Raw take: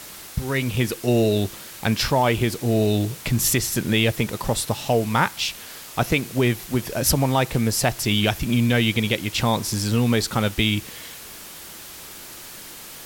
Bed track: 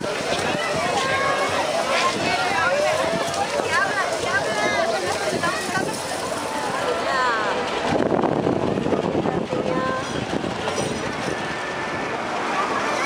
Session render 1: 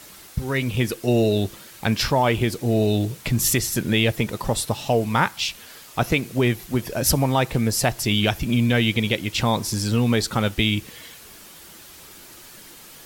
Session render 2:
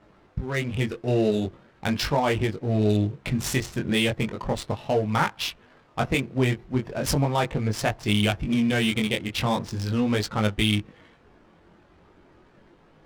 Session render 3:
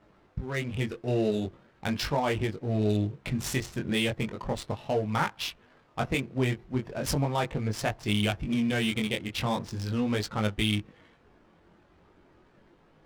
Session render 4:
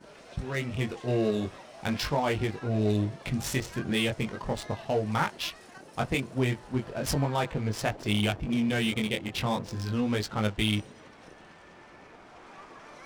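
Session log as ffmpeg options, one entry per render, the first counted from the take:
-af "afftdn=nr=6:nf=-40"
-af "flanger=delay=19:depth=4.3:speed=0.38,adynamicsmooth=sensitivity=5:basefreq=980"
-af "volume=0.596"
-filter_complex "[1:a]volume=0.0501[s0];[0:a][s0]amix=inputs=2:normalize=0"

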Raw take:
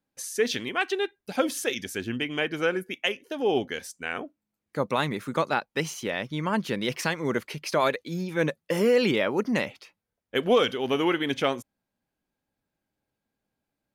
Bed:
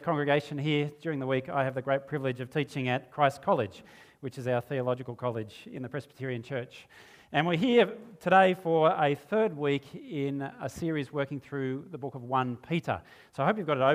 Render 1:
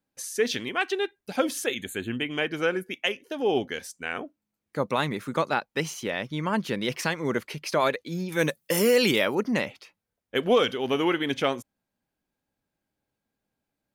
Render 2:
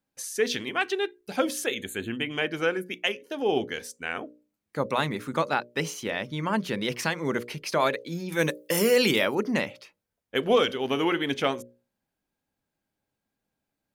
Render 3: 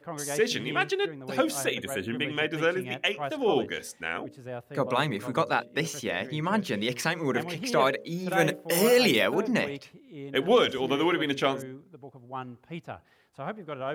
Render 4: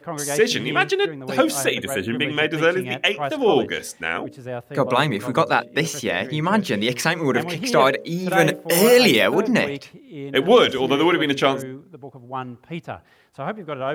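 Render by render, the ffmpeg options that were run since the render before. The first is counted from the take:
-filter_complex "[0:a]asettb=1/sr,asplit=3[s0][s1][s2];[s0]atrim=end=1.664[s3];[s1]atrim=start=1.66:end=2.31,asetpts=PTS-STARTPTS,afade=t=in:d=0.004:c=qsin,afade=t=out:st=0.646:d=0.004:c=qsin,asuperstop=centerf=5300:order=20:qfactor=2.6[s4];[s2]atrim=start=2.306[s5];[s3][s4]acrossfade=d=0.004:c1=hsin:c2=qsin[s6];[s6][s5]acrossfade=d=0.004:c1=qsin:c2=hsin,asettb=1/sr,asplit=3[s7][s8][s9];[s7]atrim=end=8.324[s10];[s8]atrim=start=8.32:end=9.35,asetpts=PTS-STARTPTS,afade=t=in:d=0.004:c=qsin,afade=t=out:st=1.026:d=0.004:c=qsin,aemphasis=mode=production:type=75kf[s11];[s9]atrim=start=9.346[s12];[s10][s11]acrossfade=d=0.004:c1=hsin:c2=qsin[s13];[s13][s12]acrossfade=d=0.004:c1=qsin:c2=hsin"
-af "bandreject=f=60:t=h:w=6,bandreject=f=120:t=h:w=6,bandreject=f=180:t=h:w=6,bandreject=f=240:t=h:w=6,bandreject=f=300:t=h:w=6,bandreject=f=360:t=h:w=6,bandreject=f=420:t=h:w=6,bandreject=f=480:t=h:w=6,bandreject=f=540:t=h:w=6,bandreject=f=600:t=h:w=6"
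-filter_complex "[1:a]volume=0.355[s0];[0:a][s0]amix=inputs=2:normalize=0"
-af "volume=2.37,alimiter=limit=0.708:level=0:latency=1"

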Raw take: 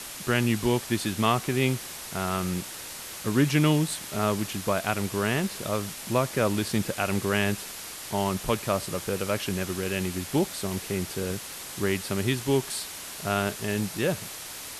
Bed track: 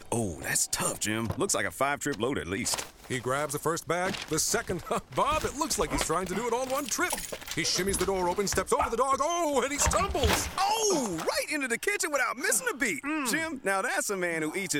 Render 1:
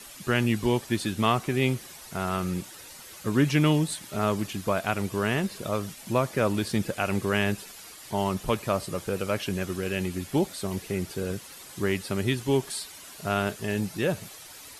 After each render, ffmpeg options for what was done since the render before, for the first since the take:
-af "afftdn=nr=10:nf=-40"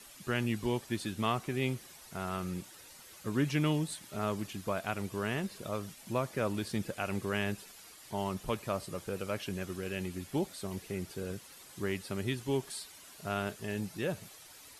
-af "volume=0.398"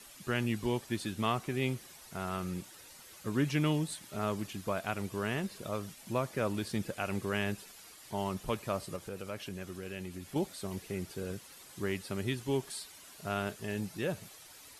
-filter_complex "[0:a]asettb=1/sr,asplit=3[s0][s1][s2];[s0]atrim=end=8.964[s3];[s1]atrim=start=8.96:end=10.36,asetpts=PTS-STARTPTS,afade=t=in:d=0.004:c=qsin,afade=t=out:st=1.396:d=0.004:c=qsin,acompressor=threshold=0.00631:ratio=1.5:attack=3.2:release=140:knee=1:detection=peak[s4];[s2]atrim=start=10.356[s5];[s3][s4]acrossfade=d=0.004:c1=hsin:c2=qsin[s6];[s6][s5]acrossfade=d=0.004:c1=qsin:c2=hsin"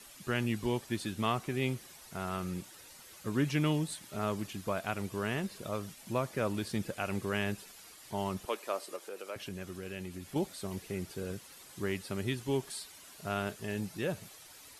-filter_complex "[0:a]asettb=1/sr,asplit=3[s0][s1][s2];[s0]atrim=end=8.454[s3];[s1]atrim=start=8.45:end=9.36,asetpts=PTS-STARTPTS,afade=t=in:d=0.004:c=qsin,afade=t=out:st=0.906:d=0.004:c=qsin,highpass=f=330:w=0.5412,highpass=f=330:w=1.3066[s4];[s2]atrim=start=9.356[s5];[s3][s4]acrossfade=d=0.004:c1=hsin:c2=qsin[s6];[s6][s5]acrossfade=d=0.004:c1=qsin:c2=hsin"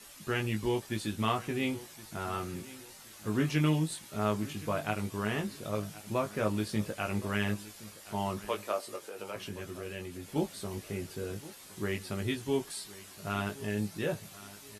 -filter_complex "[0:a]asplit=2[s0][s1];[s1]adelay=19,volume=0.631[s2];[s0][s2]amix=inputs=2:normalize=0,aecho=1:1:1069|2138|3207:0.126|0.0415|0.0137"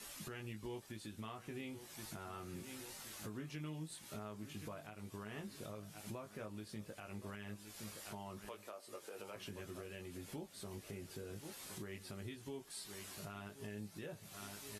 -af "acompressor=threshold=0.00708:ratio=2.5,alimiter=level_in=4.73:limit=0.0631:level=0:latency=1:release=442,volume=0.211"

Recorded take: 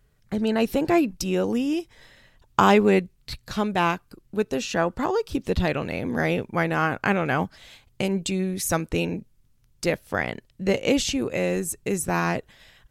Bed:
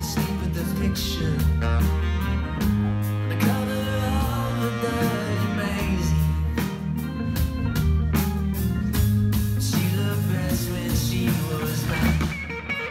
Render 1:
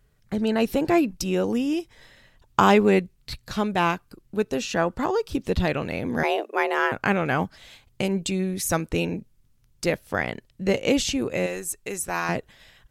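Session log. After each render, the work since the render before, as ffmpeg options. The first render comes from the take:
-filter_complex "[0:a]asettb=1/sr,asplit=3[s0][s1][s2];[s0]atrim=end=6.234[s3];[s1]atrim=start=6.23:end=6.92,asetpts=PTS-STARTPTS,afade=t=in:d=0.004:c=qsin,afade=t=out:st=0.686:d=0.004:c=qsin,afreqshift=210[s4];[s2]atrim=start=6.916[s5];[s3][s4]acrossfade=d=0.004:c1=hsin:c2=qsin[s6];[s6][s5]acrossfade=d=0.004:c1=qsin:c2=hsin,asettb=1/sr,asplit=3[s7][s8][s9];[s7]atrim=end=11.464[s10];[s8]atrim=start=11.46:end=12.29,asetpts=PTS-STARTPTS,afade=t=in:d=0.004:c=qsin,afade=t=out:st=0.826:d=0.004:c=qsin,equalizer=f=150:t=o:w=2.9:g=-12.5[s11];[s9]atrim=start=12.286[s12];[s10][s11]acrossfade=d=0.004:c1=hsin:c2=qsin[s13];[s13][s12]acrossfade=d=0.004:c1=qsin:c2=hsin"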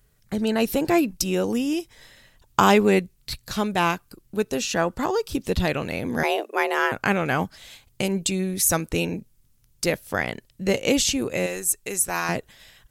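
-af "highshelf=f=5400:g=10.5"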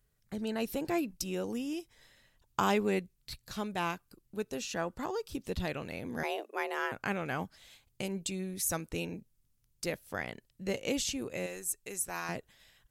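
-af "volume=0.251"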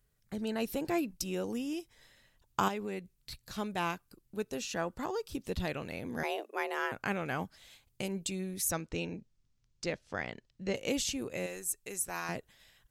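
-filter_complex "[0:a]asettb=1/sr,asplit=3[s0][s1][s2];[s0]atrim=end=2.684[s3];[s1]atrim=start=2.68:end=3.58,asetpts=PTS-STARTPTS,afade=t=in:d=0.004:c=qsin,afade=t=out:st=0.896:d=0.004:c=qsin,acompressor=threshold=0.01:ratio=2:attack=3.2:release=140:knee=1:detection=peak[s4];[s2]atrim=start=3.576[s5];[s3][s4]acrossfade=d=0.004:c1=hsin:c2=qsin[s6];[s6][s5]acrossfade=d=0.004:c1=qsin:c2=hsin,asettb=1/sr,asplit=3[s7][s8][s9];[s7]atrim=end=8.714[s10];[s8]atrim=start=8.71:end=10.75,asetpts=PTS-STARTPTS,afade=t=in:d=0.004:c=qsin,afade=t=out:st=2.036:d=0.004:c=qsin,lowpass=f=6600:w=0.5412,lowpass=f=6600:w=1.3066[s11];[s9]atrim=start=10.746[s12];[s10][s11]acrossfade=d=0.004:c1=hsin:c2=qsin[s13];[s13][s12]acrossfade=d=0.004:c1=qsin:c2=hsin"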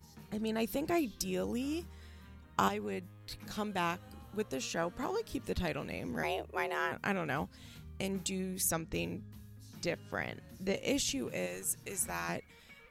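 -filter_complex "[1:a]volume=0.0335[s0];[0:a][s0]amix=inputs=2:normalize=0"

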